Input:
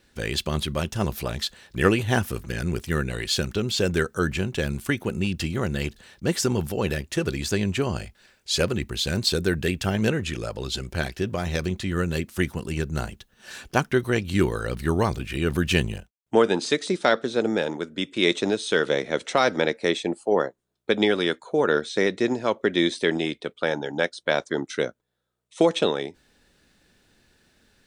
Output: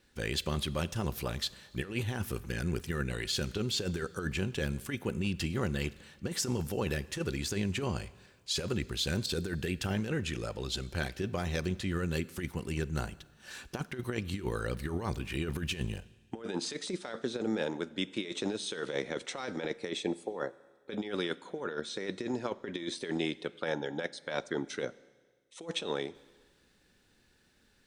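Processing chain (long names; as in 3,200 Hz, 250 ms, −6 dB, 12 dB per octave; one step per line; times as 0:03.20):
notch filter 650 Hz, Q 12
compressor whose output falls as the input rises −24 dBFS, ratio −0.5
four-comb reverb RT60 1.5 s, combs from 32 ms, DRR 19 dB
level −8 dB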